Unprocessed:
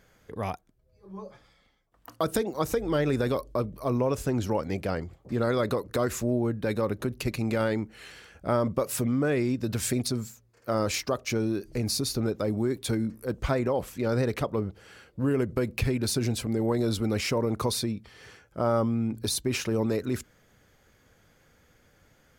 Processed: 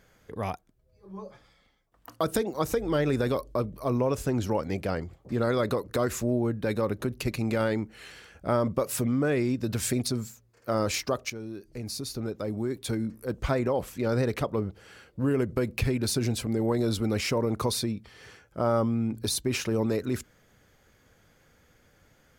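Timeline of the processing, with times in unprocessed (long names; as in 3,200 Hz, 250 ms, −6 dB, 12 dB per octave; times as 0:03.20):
0:11.30–0:13.58: fade in, from −12.5 dB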